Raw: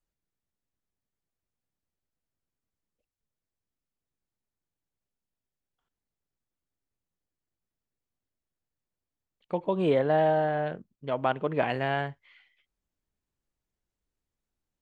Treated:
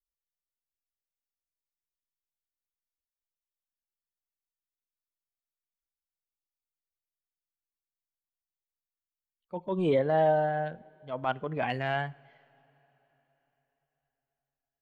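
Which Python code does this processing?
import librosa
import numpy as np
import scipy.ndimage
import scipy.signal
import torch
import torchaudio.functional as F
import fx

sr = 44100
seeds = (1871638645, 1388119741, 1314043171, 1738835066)

y = fx.bin_expand(x, sr, power=1.5)
y = fx.wow_flutter(y, sr, seeds[0], rate_hz=2.1, depth_cents=26.0)
y = fx.transient(y, sr, attack_db=-7, sustain_db=0)
y = fx.rev_double_slope(y, sr, seeds[1], early_s=0.6, late_s=4.2, knee_db=-15, drr_db=19.5)
y = F.gain(torch.from_numpy(y), 1.5).numpy()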